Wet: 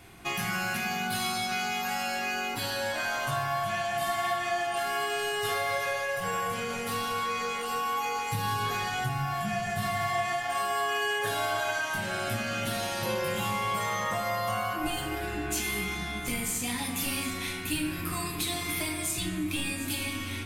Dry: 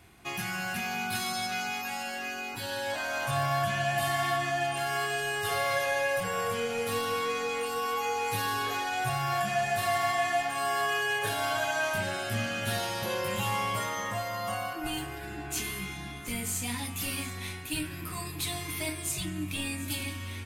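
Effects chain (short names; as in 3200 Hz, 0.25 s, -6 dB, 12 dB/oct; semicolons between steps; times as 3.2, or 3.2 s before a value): 8.32–10.01 resonant low shelf 260 Hz +9 dB, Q 1.5; compressor, threshold -33 dBFS, peak gain reduction 12.5 dB; on a send: reverb RT60 1.5 s, pre-delay 4 ms, DRR 3 dB; on the sum: gain +4.5 dB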